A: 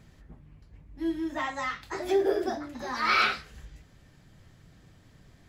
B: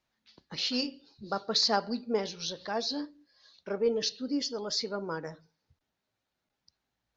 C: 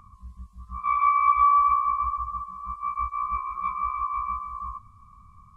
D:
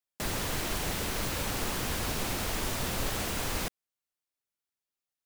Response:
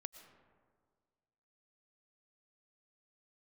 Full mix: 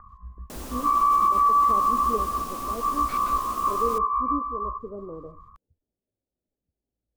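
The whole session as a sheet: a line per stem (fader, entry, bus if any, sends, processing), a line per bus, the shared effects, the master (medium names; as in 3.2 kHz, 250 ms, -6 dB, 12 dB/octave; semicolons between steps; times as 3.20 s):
-17.0 dB, 0.00 s, no send, trance gate ".x.x.xx.xx." 175 bpm
-0.5 dB, 0.00 s, no send, inverse Chebyshev low-pass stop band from 3.2 kHz, stop band 80 dB; bass shelf 390 Hz +7 dB
+2.5 dB, 0.00 s, send -8 dB, steep low-pass 1.9 kHz 72 dB/octave
-6.0 dB, 0.30 s, send -14 dB, graphic EQ 250/2000/4000 Hz +10/-7/-4 dB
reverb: on, RT60 1.8 s, pre-delay 75 ms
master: peaking EQ 140 Hz -9.5 dB 1.7 oct; peak limiter -13.5 dBFS, peak gain reduction 7.5 dB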